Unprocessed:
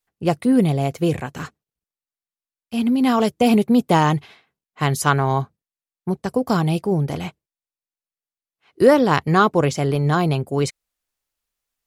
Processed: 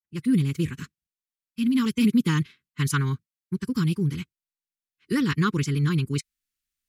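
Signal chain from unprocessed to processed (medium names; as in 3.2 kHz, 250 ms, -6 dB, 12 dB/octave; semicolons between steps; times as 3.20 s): fade-in on the opening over 0.58 s; time stretch by phase-locked vocoder 0.58×; Butterworth band-stop 670 Hz, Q 0.56; trim -2 dB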